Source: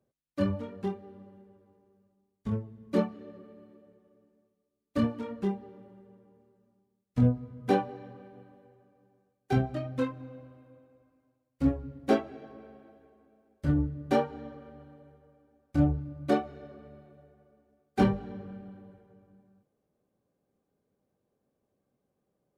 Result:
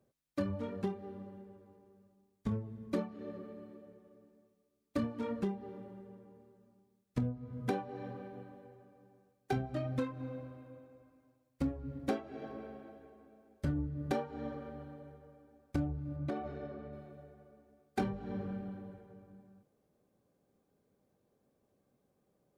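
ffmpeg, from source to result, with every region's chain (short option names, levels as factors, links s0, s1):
-filter_complex "[0:a]asettb=1/sr,asplit=3[s0][s1][s2];[s0]atrim=end=16.164[s3];[s1]atrim=start=16.16:end=16.93,asetpts=PTS-STARTPTS,afade=t=in:d=0.004:c=qsin,afade=t=out:st=0.766:d=0.004:c=qsin,lowpass=f=2900:p=1,acompressor=threshold=0.0158:ratio=6:attack=3.2:release=140:knee=1:detection=peak[s4];[s2]atrim=start=16.926[s5];[s3][s4]acrossfade=d=0.004:c1=hsin:c2=qsin[s6];[s6][s5]acrossfade=d=0.004:c1=qsin:c2=hsin,bandreject=f=2900:w=28,acompressor=threshold=0.02:ratio=10,volume=1.41"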